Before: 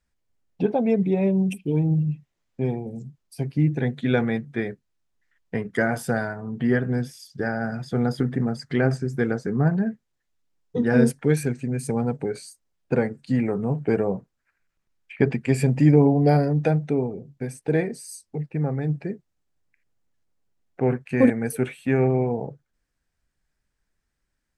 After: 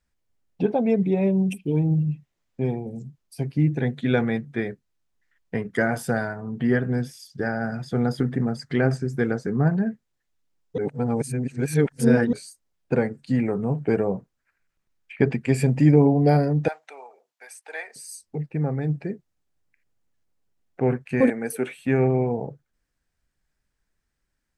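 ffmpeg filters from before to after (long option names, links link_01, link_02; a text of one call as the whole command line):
ffmpeg -i in.wav -filter_complex "[0:a]asettb=1/sr,asplit=3[link_01][link_02][link_03];[link_01]atrim=end=16.684[link_04];[link_02]atrim=start=16.68:end=17.96,asetpts=PTS-STARTPTS,afade=type=in:duration=0.004:curve=qsin,afade=type=out:start_time=1.276:duration=0.004:curve=qsin,highpass=frequency=790:width=0.5412,highpass=frequency=790:width=1.3066[link_05];[link_03]atrim=start=17.956[link_06];[link_04][link_05]acrossfade=duration=0.004:curve1=hsin:curve2=qsin[link_07];[link_07][link_06]acrossfade=duration=0.004:curve1=qsin:curve2=hsin,asettb=1/sr,asplit=3[link_08][link_09][link_10];[link_08]atrim=end=21.204[link_11];[link_09]atrim=start=21.2:end=21.76,asetpts=PTS-STARTPTS,afade=type=in:duration=0.004:curve=qsin,afade=type=out:start_time=0.556:duration=0.004:curve=qsin,highpass=250[link_12];[link_10]atrim=start=21.756[link_13];[link_11][link_12]acrossfade=duration=0.004:curve1=hsin:curve2=qsin[link_14];[link_14][link_13]acrossfade=duration=0.004:curve1=qsin:curve2=hsin,asplit=3[link_15][link_16][link_17];[link_15]atrim=end=10.782[link_18];[link_16]atrim=start=10.778:end=12.332,asetpts=PTS-STARTPTS,areverse[link_19];[link_17]atrim=start=12.328[link_20];[link_18][link_19]acrossfade=duration=0.004:curve1=hsin:curve2=hsin[link_21];[link_21][link_20]acrossfade=duration=0.004:curve1=hsin:curve2=hsin" out.wav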